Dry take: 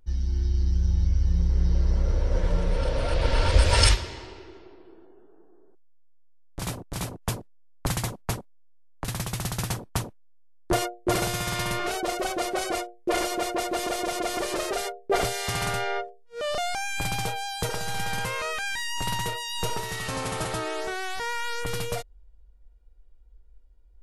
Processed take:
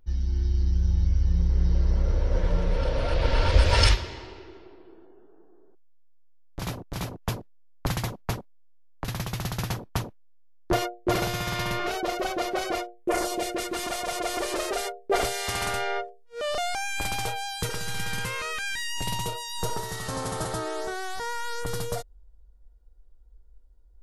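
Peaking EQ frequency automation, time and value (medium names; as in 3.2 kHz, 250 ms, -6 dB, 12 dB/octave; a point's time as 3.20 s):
peaking EQ -11 dB 0.64 oct
12.94 s 8.8 kHz
13.42 s 1.2 kHz
14.49 s 140 Hz
17.18 s 140 Hz
17.64 s 710 Hz
18.67 s 710 Hz
19.48 s 2.5 kHz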